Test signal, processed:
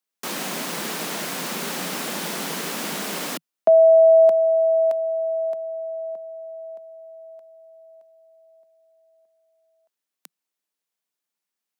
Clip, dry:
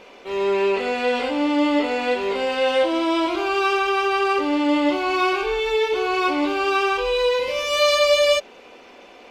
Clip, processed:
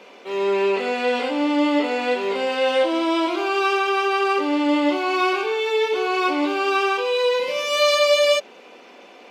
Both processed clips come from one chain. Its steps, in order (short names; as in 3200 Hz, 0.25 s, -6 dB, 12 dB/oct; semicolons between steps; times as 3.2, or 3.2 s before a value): steep high-pass 160 Hz 72 dB/oct